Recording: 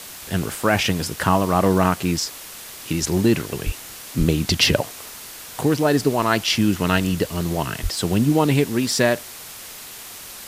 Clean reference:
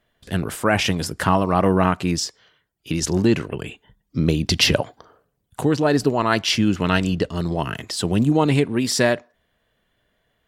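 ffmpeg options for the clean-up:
-filter_complex "[0:a]asplit=3[s0][s1][s2];[s0]afade=t=out:st=3.65:d=0.02[s3];[s1]highpass=f=140:w=0.5412,highpass=f=140:w=1.3066,afade=t=in:st=3.65:d=0.02,afade=t=out:st=3.77:d=0.02[s4];[s2]afade=t=in:st=3.77:d=0.02[s5];[s3][s4][s5]amix=inputs=3:normalize=0,asplit=3[s6][s7][s8];[s6]afade=t=out:st=4.18:d=0.02[s9];[s7]highpass=f=140:w=0.5412,highpass=f=140:w=1.3066,afade=t=in:st=4.18:d=0.02,afade=t=out:st=4.3:d=0.02[s10];[s8]afade=t=in:st=4.3:d=0.02[s11];[s9][s10][s11]amix=inputs=3:normalize=0,asplit=3[s12][s13][s14];[s12]afade=t=out:st=7.82:d=0.02[s15];[s13]highpass=f=140:w=0.5412,highpass=f=140:w=1.3066,afade=t=in:st=7.82:d=0.02,afade=t=out:st=7.94:d=0.02[s16];[s14]afade=t=in:st=7.94:d=0.02[s17];[s15][s16][s17]amix=inputs=3:normalize=0,afwtdn=0.016"

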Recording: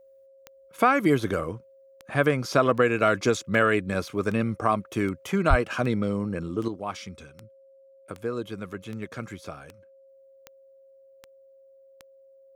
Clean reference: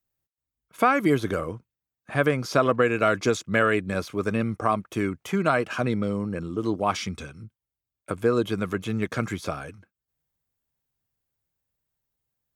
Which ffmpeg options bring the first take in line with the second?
-filter_complex "[0:a]adeclick=t=4,bandreject=f=540:w=30,asplit=3[s0][s1][s2];[s0]afade=t=out:st=5.49:d=0.02[s3];[s1]highpass=f=140:w=0.5412,highpass=f=140:w=1.3066,afade=t=in:st=5.49:d=0.02,afade=t=out:st=5.61:d=0.02[s4];[s2]afade=t=in:st=5.61:d=0.02[s5];[s3][s4][s5]amix=inputs=3:normalize=0,asetnsamples=n=441:p=0,asendcmd='6.68 volume volume 8.5dB',volume=1"

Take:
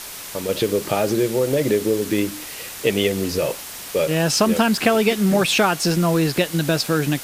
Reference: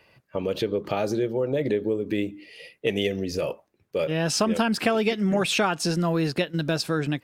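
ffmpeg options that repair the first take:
-af "afwtdn=0.022,asetnsamples=n=441:p=0,asendcmd='0.49 volume volume -5.5dB',volume=1"

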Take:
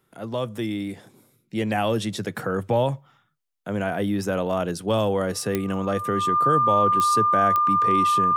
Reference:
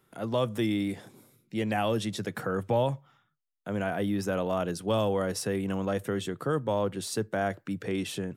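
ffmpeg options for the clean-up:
-af "adeclick=t=4,bandreject=f=1200:w=30,asetnsamples=n=441:p=0,asendcmd='1.53 volume volume -4.5dB',volume=1"

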